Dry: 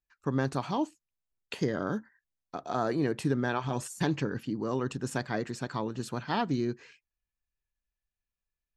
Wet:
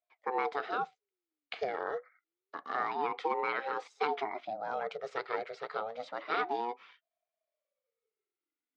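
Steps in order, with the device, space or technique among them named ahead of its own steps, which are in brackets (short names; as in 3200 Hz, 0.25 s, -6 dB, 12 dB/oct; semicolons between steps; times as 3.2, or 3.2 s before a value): voice changer toy (ring modulator with a swept carrier 460 Hz, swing 45%, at 0.28 Hz; speaker cabinet 450–4500 Hz, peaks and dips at 450 Hz +9 dB, 730 Hz +4 dB, 1300 Hz +7 dB, 2200 Hz +6 dB, 3700 Hz +3 dB); gain -3 dB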